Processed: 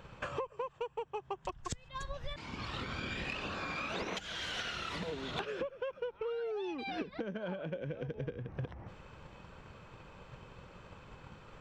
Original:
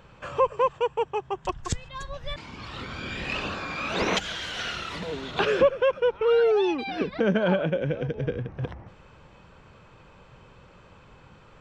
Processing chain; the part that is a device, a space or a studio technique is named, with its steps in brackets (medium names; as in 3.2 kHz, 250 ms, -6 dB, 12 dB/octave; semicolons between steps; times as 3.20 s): drum-bus smash (transient shaper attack +7 dB, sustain +1 dB; compression 10:1, threshold -33 dBFS, peak gain reduction 22.5 dB; saturation -23 dBFS, distortion -25 dB); trim -2 dB